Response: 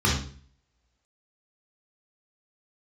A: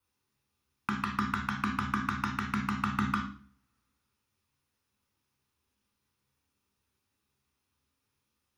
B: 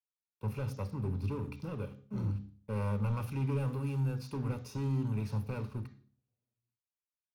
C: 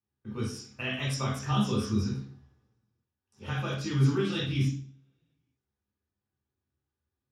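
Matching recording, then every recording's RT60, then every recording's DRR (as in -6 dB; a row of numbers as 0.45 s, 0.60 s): C; 0.45 s, 0.45 s, 0.45 s; 1.0 dB, 10.5 dB, -5.0 dB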